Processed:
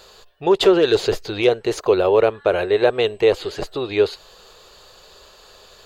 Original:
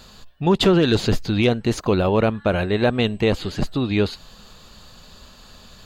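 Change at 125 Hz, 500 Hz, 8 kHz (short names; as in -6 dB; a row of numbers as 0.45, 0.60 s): -11.5 dB, +5.0 dB, n/a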